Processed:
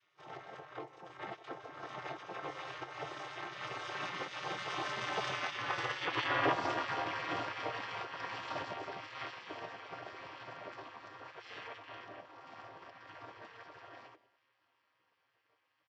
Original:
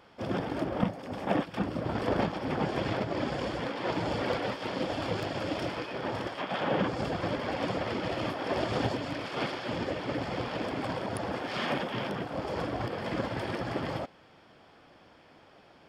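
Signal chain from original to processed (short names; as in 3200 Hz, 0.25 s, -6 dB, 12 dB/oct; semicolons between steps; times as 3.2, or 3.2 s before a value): chord vocoder major triad, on E3; Doppler pass-by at 5.97, 23 m/s, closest 20 m; outdoor echo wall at 31 m, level -21 dB; spectral gate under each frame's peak -15 dB weak; gain +13.5 dB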